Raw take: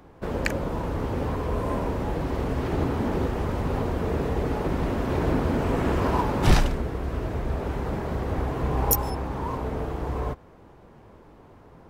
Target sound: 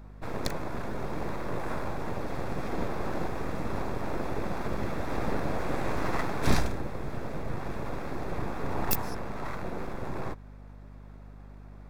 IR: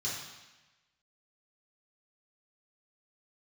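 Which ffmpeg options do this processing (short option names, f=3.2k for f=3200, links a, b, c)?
-af "aeval=exprs='abs(val(0))':c=same,bandreject=f=3k:w=5.6,aeval=exprs='val(0)+0.00794*(sin(2*PI*50*n/s)+sin(2*PI*2*50*n/s)/2+sin(2*PI*3*50*n/s)/3+sin(2*PI*4*50*n/s)/4+sin(2*PI*5*50*n/s)/5)':c=same,volume=-3.5dB"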